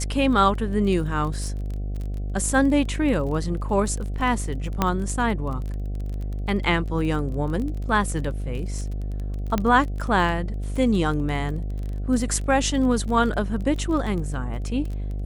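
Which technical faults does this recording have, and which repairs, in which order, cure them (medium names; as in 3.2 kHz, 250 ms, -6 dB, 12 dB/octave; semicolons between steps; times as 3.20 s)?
buzz 50 Hz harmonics 15 -28 dBFS
crackle 23 per s -30 dBFS
4.82 s: pop -6 dBFS
9.58 s: pop -10 dBFS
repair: de-click; de-hum 50 Hz, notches 15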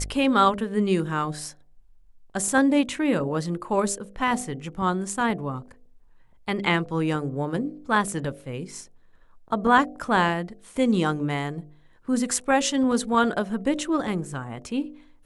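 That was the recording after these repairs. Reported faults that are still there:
nothing left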